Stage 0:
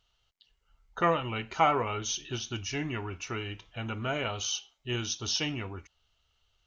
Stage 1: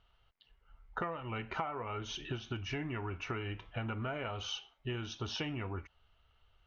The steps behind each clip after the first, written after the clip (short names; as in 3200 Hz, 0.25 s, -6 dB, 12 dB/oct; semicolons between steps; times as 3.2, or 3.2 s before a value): LPF 2000 Hz 12 dB/oct; bell 260 Hz -2.5 dB 2.9 oct; compressor 16:1, threshold -41 dBFS, peak gain reduction 21.5 dB; gain +6.5 dB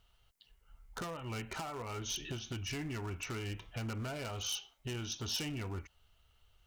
hard clip -35.5 dBFS, distortion -12 dB; EQ curve 190 Hz 0 dB, 1300 Hz -4 dB, 3500 Hz +1 dB, 7200 Hz +12 dB; gain +1 dB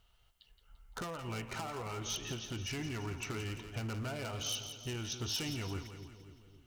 split-band echo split 540 Hz, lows 0.267 s, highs 0.171 s, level -9.5 dB